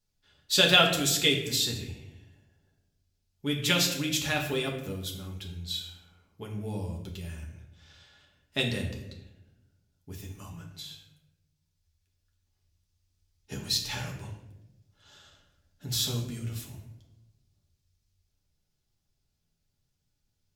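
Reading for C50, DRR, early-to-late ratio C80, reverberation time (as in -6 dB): 6.5 dB, -1.0 dB, 9.0 dB, 0.95 s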